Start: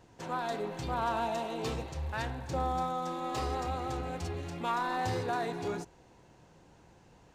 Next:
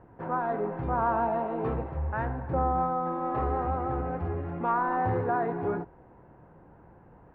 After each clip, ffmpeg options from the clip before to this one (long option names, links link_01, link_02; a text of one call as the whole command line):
ffmpeg -i in.wav -af "lowpass=frequency=1600:width=0.5412,lowpass=frequency=1600:width=1.3066,volume=5.5dB" out.wav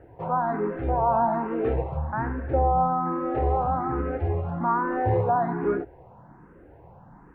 ffmpeg -i in.wav -filter_complex "[0:a]acrossover=split=1200[link_01][link_02];[link_02]alimiter=level_in=13dB:limit=-24dB:level=0:latency=1:release=51,volume=-13dB[link_03];[link_01][link_03]amix=inputs=2:normalize=0,asplit=2[link_04][link_05];[link_05]afreqshift=1.2[link_06];[link_04][link_06]amix=inputs=2:normalize=1,volume=7dB" out.wav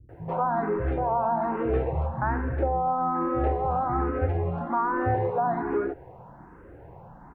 ffmpeg -i in.wav -filter_complex "[0:a]acompressor=threshold=-25dB:ratio=6,acrossover=split=210[link_01][link_02];[link_02]adelay=90[link_03];[link_01][link_03]amix=inputs=2:normalize=0,volume=3.5dB" out.wav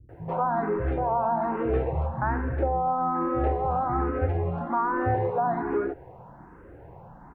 ffmpeg -i in.wav -af anull out.wav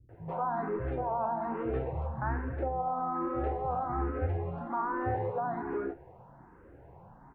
ffmpeg -i in.wav -af "flanger=delay=7.4:depth=7.5:regen=67:speed=1.1:shape=sinusoidal,volume=-2.5dB" out.wav